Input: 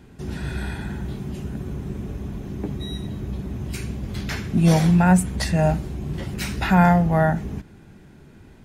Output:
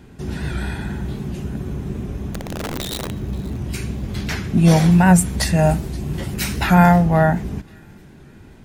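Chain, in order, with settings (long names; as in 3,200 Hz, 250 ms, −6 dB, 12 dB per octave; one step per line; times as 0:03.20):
0:02.33–0:03.11: wrap-around overflow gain 24 dB
0:04.91–0:06.92: high-shelf EQ 8,800 Hz +9.5 dB
delay with a high-pass on its return 527 ms, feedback 36%, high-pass 2,400 Hz, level −21 dB
wow of a warped record 78 rpm, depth 100 cents
level +3.5 dB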